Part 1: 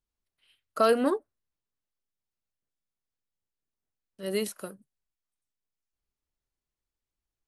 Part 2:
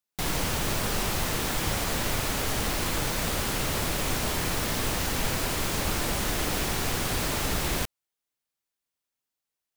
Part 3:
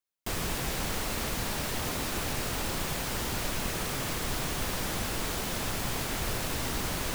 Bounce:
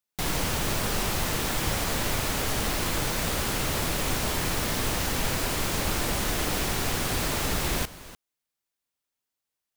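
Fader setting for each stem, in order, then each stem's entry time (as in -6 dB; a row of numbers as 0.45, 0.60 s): off, +0.5 dB, -12.0 dB; off, 0.00 s, 1.00 s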